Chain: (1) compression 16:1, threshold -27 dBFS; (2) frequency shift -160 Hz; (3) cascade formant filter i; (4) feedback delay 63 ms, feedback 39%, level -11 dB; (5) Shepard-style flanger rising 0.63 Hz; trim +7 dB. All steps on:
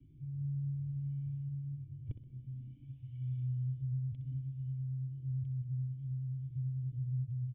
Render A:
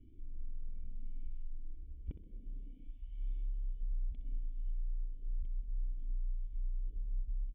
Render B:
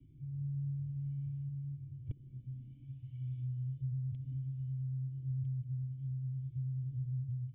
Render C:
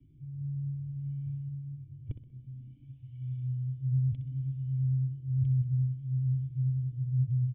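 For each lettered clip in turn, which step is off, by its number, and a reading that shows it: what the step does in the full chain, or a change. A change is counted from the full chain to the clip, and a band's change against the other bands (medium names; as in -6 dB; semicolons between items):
2, loudness change -6.0 LU; 4, momentary loudness spread change -1 LU; 1, mean gain reduction 4.0 dB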